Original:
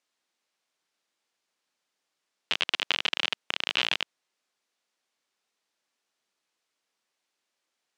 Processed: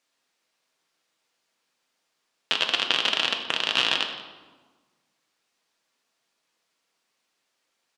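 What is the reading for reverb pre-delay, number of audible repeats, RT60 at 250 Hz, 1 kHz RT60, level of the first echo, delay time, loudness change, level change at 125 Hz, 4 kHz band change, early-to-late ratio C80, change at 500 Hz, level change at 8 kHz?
4 ms, 1, 1.7 s, 1.4 s, -16.5 dB, 0.172 s, +4.5 dB, n/a, +5.0 dB, 8.5 dB, +6.5 dB, +5.5 dB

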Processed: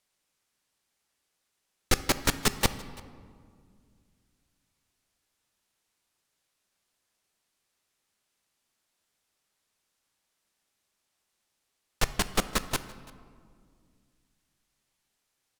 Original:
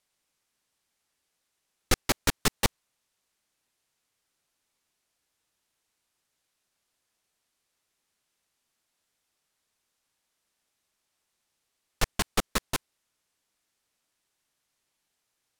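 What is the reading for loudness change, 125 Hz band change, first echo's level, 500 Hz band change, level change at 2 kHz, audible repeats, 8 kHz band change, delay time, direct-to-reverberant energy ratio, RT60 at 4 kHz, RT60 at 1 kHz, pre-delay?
0.0 dB, +0.5 dB, -23.0 dB, +0.5 dB, 0.0 dB, 1, 0.0 dB, 0.337 s, 11.5 dB, 1.0 s, 1.9 s, 5 ms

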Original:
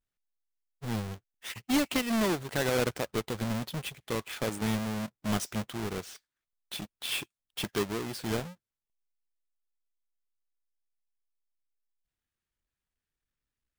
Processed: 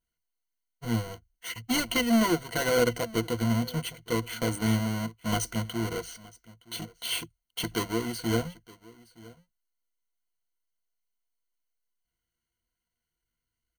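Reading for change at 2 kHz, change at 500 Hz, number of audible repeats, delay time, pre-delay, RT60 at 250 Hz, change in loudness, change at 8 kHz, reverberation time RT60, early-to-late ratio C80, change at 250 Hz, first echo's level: +3.0 dB, +3.0 dB, 1, 0.918 s, none, none, +3.5 dB, +4.0 dB, none, none, +3.5 dB, -22.0 dB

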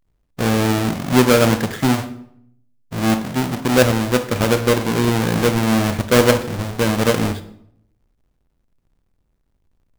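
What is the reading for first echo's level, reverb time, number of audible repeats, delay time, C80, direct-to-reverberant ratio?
none, 0.70 s, none, none, 16.5 dB, 10.0 dB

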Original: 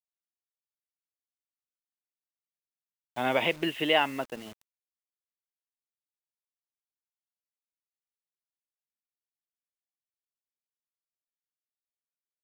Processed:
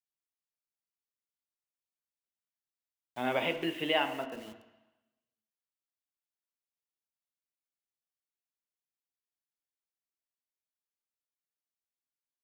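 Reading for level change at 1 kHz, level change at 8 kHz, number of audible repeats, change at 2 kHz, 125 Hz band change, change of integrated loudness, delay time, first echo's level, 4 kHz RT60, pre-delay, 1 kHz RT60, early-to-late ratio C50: -4.5 dB, -5.5 dB, none, -5.0 dB, -4.5 dB, -4.5 dB, none, none, 1.2 s, 3 ms, 1.2 s, 10.5 dB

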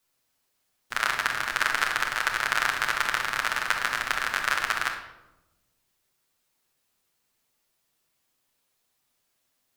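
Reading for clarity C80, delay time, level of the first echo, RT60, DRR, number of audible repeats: 9.5 dB, none, none, 1.0 s, -1.0 dB, none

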